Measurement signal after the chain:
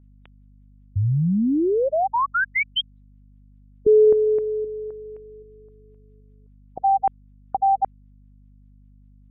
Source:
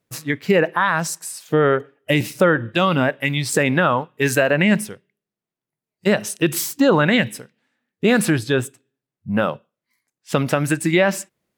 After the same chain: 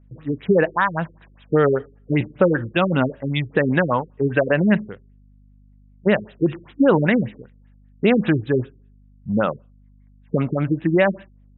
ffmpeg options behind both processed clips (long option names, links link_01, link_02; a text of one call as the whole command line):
ffmpeg -i in.wav -af "aeval=exprs='val(0)+0.00316*(sin(2*PI*50*n/s)+sin(2*PI*2*50*n/s)/2+sin(2*PI*3*50*n/s)/3+sin(2*PI*4*50*n/s)/4+sin(2*PI*5*50*n/s)/5)':channel_layout=same,afftfilt=real='re*lt(b*sr/1024,440*pow(4000/440,0.5+0.5*sin(2*PI*5.1*pts/sr)))':imag='im*lt(b*sr/1024,440*pow(4000/440,0.5+0.5*sin(2*PI*5.1*pts/sr)))':win_size=1024:overlap=0.75" out.wav